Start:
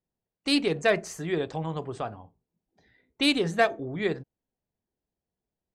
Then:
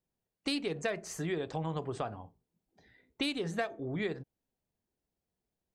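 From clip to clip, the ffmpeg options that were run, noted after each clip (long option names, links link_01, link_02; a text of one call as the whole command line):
ffmpeg -i in.wav -af "acompressor=threshold=-31dB:ratio=6" out.wav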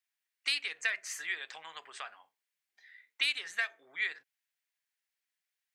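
ffmpeg -i in.wav -af "highpass=frequency=1900:width_type=q:width=2.2,volume=2.5dB" out.wav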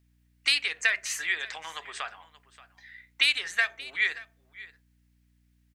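ffmpeg -i in.wav -af "aeval=exprs='val(0)+0.000251*(sin(2*PI*60*n/s)+sin(2*PI*2*60*n/s)/2+sin(2*PI*3*60*n/s)/3+sin(2*PI*4*60*n/s)/4+sin(2*PI*5*60*n/s)/5)':channel_layout=same,aecho=1:1:579:0.119,volume=7.5dB" out.wav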